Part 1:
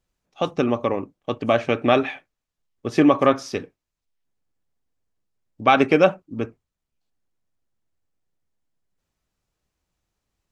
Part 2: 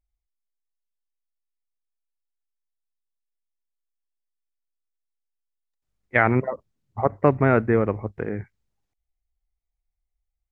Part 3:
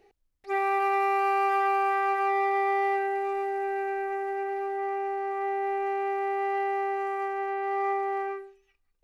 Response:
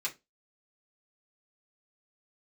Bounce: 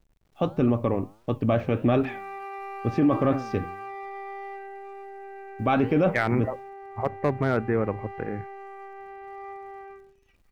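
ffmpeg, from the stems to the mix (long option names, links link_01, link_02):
-filter_complex "[0:a]aemphasis=mode=reproduction:type=riaa,flanger=delay=6.7:depth=5:regen=89:speed=1.5:shape=triangular,acrusher=bits=10:mix=0:aa=0.000001,volume=-0.5dB[link_01];[1:a]asoftclip=type=hard:threshold=-7.5dB,volume=-3.5dB[link_02];[2:a]acompressor=mode=upward:threshold=-28dB:ratio=2.5,adelay=1600,volume=-12dB[link_03];[link_01][link_02][link_03]amix=inputs=3:normalize=0,alimiter=limit=-13.5dB:level=0:latency=1:release=10"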